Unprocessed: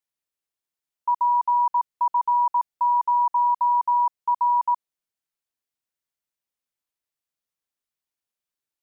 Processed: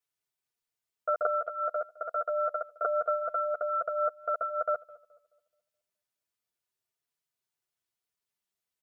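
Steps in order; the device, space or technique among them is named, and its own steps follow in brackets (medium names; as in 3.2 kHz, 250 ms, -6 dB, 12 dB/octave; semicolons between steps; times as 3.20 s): 1.25–2.85 s: Bessel high-pass 700 Hz, order 8; comb 3.7 ms, depth 90%; alien voice (ring modulator 370 Hz; flange 0.28 Hz, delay 6.9 ms, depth 4.6 ms, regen 0%); tape echo 212 ms, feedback 42%, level -19.5 dB, low-pass 1.1 kHz; trim +3.5 dB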